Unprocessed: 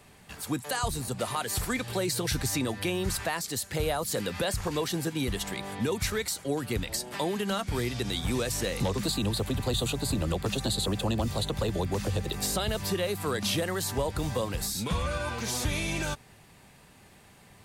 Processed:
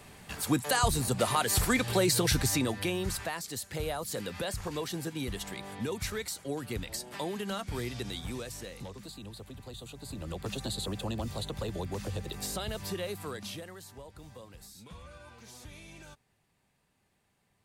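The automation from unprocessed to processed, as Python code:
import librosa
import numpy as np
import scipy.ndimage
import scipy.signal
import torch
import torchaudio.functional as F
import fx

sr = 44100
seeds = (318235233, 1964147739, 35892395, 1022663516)

y = fx.gain(x, sr, db=fx.line((2.18, 3.5), (3.37, -5.5), (7.99, -5.5), (9.02, -16.5), (9.89, -16.5), (10.48, -6.5), (13.13, -6.5), (13.92, -19.0)))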